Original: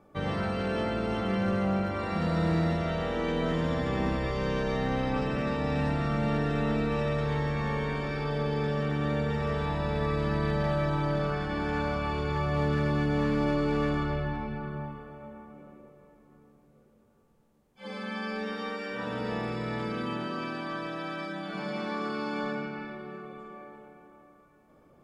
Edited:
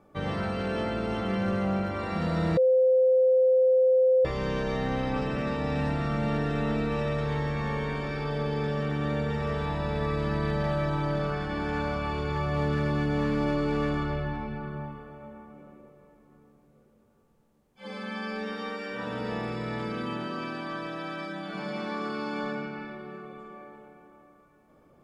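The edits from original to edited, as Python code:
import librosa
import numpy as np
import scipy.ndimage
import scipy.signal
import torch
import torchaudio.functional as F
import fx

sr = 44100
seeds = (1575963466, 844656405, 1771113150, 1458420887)

y = fx.edit(x, sr, fx.bleep(start_s=2.57, length_s=1.68, hz=516.0, db=-17.5), tone=tone)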